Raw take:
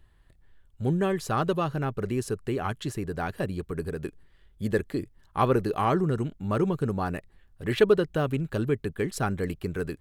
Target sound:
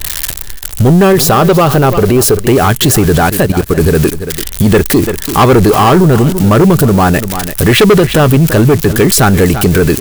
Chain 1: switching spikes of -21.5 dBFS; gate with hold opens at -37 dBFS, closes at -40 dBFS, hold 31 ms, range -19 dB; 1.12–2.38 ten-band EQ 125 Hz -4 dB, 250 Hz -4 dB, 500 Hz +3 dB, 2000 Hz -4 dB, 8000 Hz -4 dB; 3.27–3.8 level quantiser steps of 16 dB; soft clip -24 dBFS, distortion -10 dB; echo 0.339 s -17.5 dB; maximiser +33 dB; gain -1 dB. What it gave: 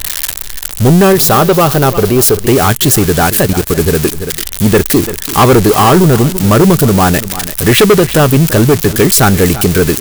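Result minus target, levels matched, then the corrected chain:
switching spikes: distortion +11 dB
switching spikes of -33 dBFS; gate with hold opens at -37 dBFS, closes at -40 dBFS, hold 31 ms, range -19 dB; 1.12–2.38 ten-band EQ 125 Hz -4 dB, 250 Hz -4 dB, 500 Hz +3 dB, 2000 Hz -4 dB, 8000 Hz -4 dB; 3.27–3.8 level quantiser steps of 16 dB; soft clip -24 dBFS, distortion -9 dB; echo 0.339 s -17.5 dB; maximiser +33 dB; gain -1 dB

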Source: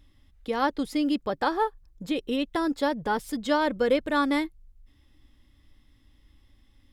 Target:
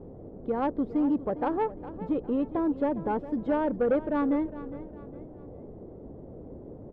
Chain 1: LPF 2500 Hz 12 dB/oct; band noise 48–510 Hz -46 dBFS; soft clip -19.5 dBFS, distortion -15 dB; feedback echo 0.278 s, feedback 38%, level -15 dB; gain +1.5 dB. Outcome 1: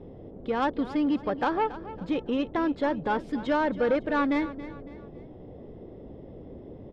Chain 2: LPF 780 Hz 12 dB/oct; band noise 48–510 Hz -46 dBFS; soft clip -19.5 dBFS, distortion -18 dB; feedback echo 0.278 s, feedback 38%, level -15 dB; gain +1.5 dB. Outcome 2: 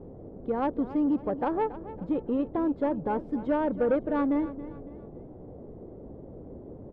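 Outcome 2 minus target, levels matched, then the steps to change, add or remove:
echo 0.13 s early
change: feedback echo 0.408 s, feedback 38%, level -15 dB

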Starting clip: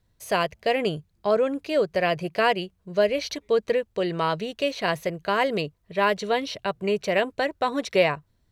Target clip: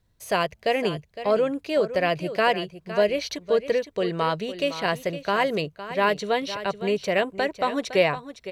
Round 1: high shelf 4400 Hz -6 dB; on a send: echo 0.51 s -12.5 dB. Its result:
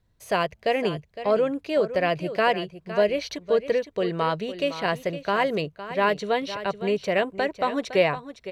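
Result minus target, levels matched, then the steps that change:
8000 Hz band -4.0 dB
remove: high shelf 4400 Hz -6 dB

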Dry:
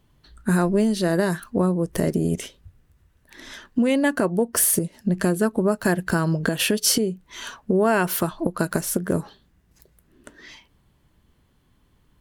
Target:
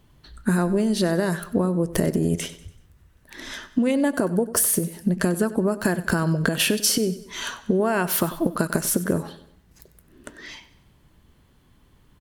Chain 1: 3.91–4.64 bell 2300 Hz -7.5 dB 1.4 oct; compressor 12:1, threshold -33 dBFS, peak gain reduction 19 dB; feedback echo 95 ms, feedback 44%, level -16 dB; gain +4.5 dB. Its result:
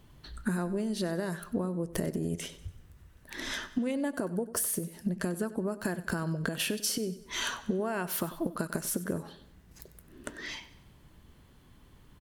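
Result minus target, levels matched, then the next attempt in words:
compressor: peak gain reduction +10.5 dB
3.91–4.64 bell 2300 Hz -7.5 dB 1.4 oct; compressor 12:1, threshold -21.5 dBFS, peak gain reduction 8 dB; feedback echo 95 ms, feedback 44%, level -16 dB; gain +4.5 dB

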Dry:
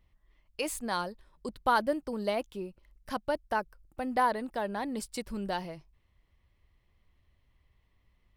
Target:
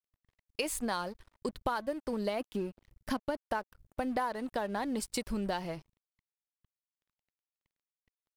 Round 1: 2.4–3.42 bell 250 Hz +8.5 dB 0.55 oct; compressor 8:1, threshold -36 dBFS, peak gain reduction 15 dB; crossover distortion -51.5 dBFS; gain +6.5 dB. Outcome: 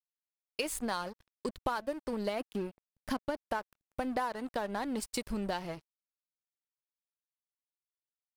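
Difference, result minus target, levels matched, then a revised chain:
crossover distortion: distortion +5 dB
2.4–3.42 bell 250 Hz +8.5 dB 0.55 oct; compressor 8:1, threshold -36 dBFS, peak gain reduction 15 dB; crossover distortion -58.5 dBFS; gain +6.5 dB

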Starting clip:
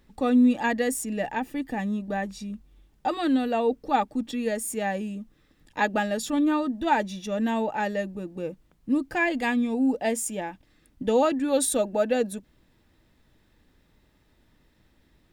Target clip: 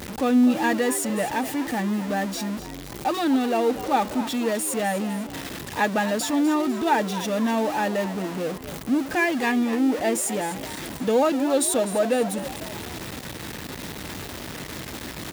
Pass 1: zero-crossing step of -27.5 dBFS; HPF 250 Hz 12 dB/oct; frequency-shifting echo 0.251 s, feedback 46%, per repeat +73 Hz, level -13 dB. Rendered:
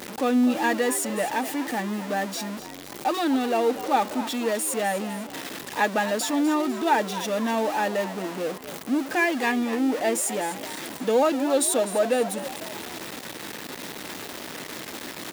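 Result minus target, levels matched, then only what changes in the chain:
125 Hz band -5.0 dB
change: HPF 86 Hz 12 dB/oct

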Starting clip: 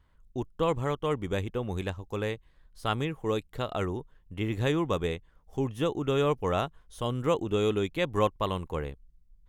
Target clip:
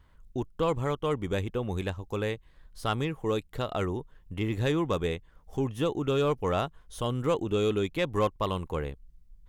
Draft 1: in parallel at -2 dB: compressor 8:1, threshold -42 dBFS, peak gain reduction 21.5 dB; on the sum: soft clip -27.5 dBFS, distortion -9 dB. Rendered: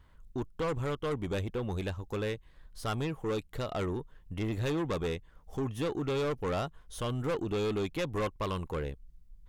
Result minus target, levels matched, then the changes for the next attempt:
soft clip: distortion +13 dB
change: soft clip -15.5 dBFS, distortion -22 dB

